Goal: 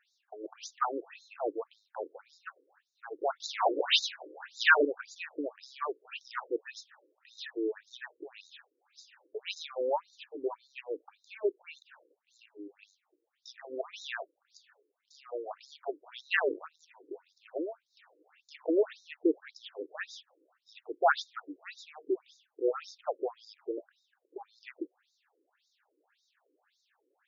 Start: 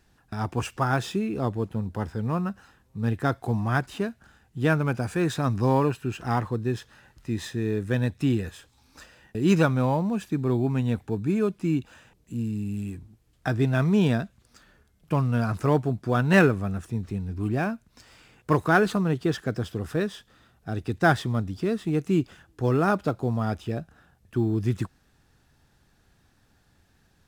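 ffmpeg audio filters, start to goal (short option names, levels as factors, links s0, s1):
-filter_complex "[0:a]asettb=1/sr,asplit=3[s0][s1][s2];[s0]atrim=end=3.404[s3];[s1]atrim=start=3.4:end=4.85,asetpts=PTS-STARTPTS,afade=t=in:d=0.004:c=qsin,afade=t=out:st=1.446:d=0.004:c=qsin,asplit=2[s4][s5];[s5]highpass=f=720:p=1,volume=44.7,asoftclip=type=tanh:threshold=0.335[s6];[s4][s6]amix=inputs=2:normalize=0,lowpass=f=8000:p=1,volume=0.501[s7];[s2]atrim=start=4.846[s8];[s3][s7]acrossfade=d=0.004:c1=hsin:c2=qsin[s9];[s9][s8]acrossfade=d=0.004:c1=qsin:c2=hsin,asettb=1/sr,asplit=3[s10][s11][s12];[s10]atrim=end=16.354[s13];[s11]atrim=start=16.35:end=16.88,asetpts=PTS-STARTPTS,afade=t=in:d=0.004:c=qsin,afade=t=out:st=0.526:d=0.004:c=qsin,tremolo=f=160:d=0.947[s14];[s12]atrim=start=16.876[s15];[s13][s14]acrossfade=d=0.004:c1=hsin:c2=qsin[s16];[s16][s15]acrossfade=d=0.004:c1=qsin:c2=hsin,afftfilt=real='re*between(b*sr/1024,370*pow(5200/370,0.5+0.5*sin(2*PI*1.8*pts/sr))/1.41,370*pow(5200/370,0.5+0.5*sin(2*PI*1.8*pts/sr))*1.41)':imag='im*between(b*sr/1024,370*pow(5200/370,0.5+0.5*sin(2*PI*1.8*pts/sr))/1.41,370*pow(5200/370,0.5+0.5*sin(2*PI*1.8*pts/sr))*1.41)':win_size=1024:overlap=0.75"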